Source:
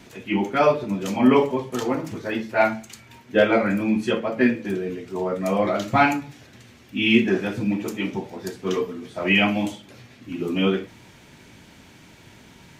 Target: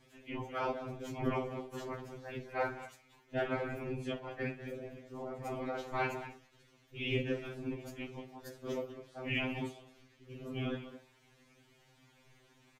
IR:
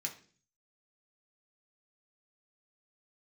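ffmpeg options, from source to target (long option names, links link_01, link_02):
-filter_complex "[0:a]asettb=1/sr,asplit=3[link_01][link_02][link_03];[link_01]atrim=end=8.444[link_04];[link_02]atrim=start=8.44:end=8.85,asetpts=PTS-STARTPTS,afade=type=in:duration=0.004:curve=qsin,afade=type=out:start_time=0.406:duration=0.004:curve=qsin,highshelf=frequency=11000:gain=9[link_05];[link_03]atrim=start=8.846[link_06];[link_04][link_05]acrossfade=duration=0.004:curve1=hsin:curve2=qsin[link_07];[link_07][link_06]acrossfade=duration=0.004:curve1=qsin:curve2=hsin,asplit=2[link_08][link_09];[link_09]adelay=200,highpass=300,lowpass=3400,asoftclip=type=hard:threshold=-12.5dB,volume=-11dB[link_10];[link_08][link_10]amix=inputs=2:normalize=0,aeval=exprs='val(0)*sin(2*PI*97*n/s)':channel_layout=same,afftfilt=real='hypot(re,im)*cos(2*PI*random(0))':imag='hypot(re,im)*sin(2*PI*random(1))':win_size=512:overlap=0.75,afftfilt=real='re*2.45*eq(mod(b,6),0)':imag='im*2.45*eq(mod(b,6),0)':win_size=2048:overlap=0.75,volume=-5.5dB"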